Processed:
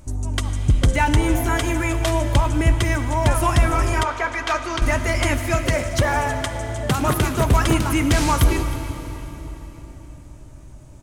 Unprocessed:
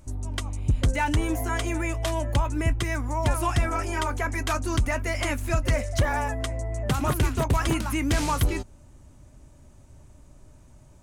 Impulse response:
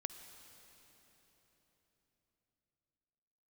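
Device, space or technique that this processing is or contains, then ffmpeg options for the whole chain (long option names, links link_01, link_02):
cave: -filter_complex "[0:a]aecho=1:1:318:0.133[link_01];[1:a]atrim=start_sample=2205[link_02];[link_01][link_02]afir=irnorm=-1:irlink=0,asettb=1/sr,asplit=3[link_03][link_04][link_05];[link_03]atrim=end=4.034[link_06];[link_04]atrim=start=4.03:end=4.82,asetpts=PTS-STARTPTS,afade=type=in:duration=0.004:curve=qsin,afade=type=out:start_time=0.786:duration=0.004:curve=qsin,acrossover=split=390 6000:gain=0.178 1 0.141[link_07][link_08][link_09];[link_07][link_08][link_09]amix=inputs=3:normalize=0[link_10];[link_05]atrim=start=4.816[link_11];[link_06][link_10]acrossfade=duration=0.004:curve1=hsin:curve2=qsin[link_12];[link_12][link_11]acrossfade=duration=0.004:curve1=qsin:curve2=hsin,asettb=1/sr,asplit=3[link_13][link_14][link_15];[link_13]atrim=end=5.384[link_16];[link_14]atrim=start=5.38:end=7.41,asetpts=PTS-STARTPTS,afade=type=in:duration=0.004:curve=qsin,afade=type=out:start_time=2.026:duration=0.004:curve=qsin,highpass=frequency=100:poles=1[link_17];[link_15]atrim=start=7.406[link_18];[link_16][link_17]acrossfade=duration=0.004:curve1=hsin:curve2=qsin[link_19];[link_19][link_18]acrossfade=duration=0.004:curve1=qsin:curve2=hsin,volume=8.5dB"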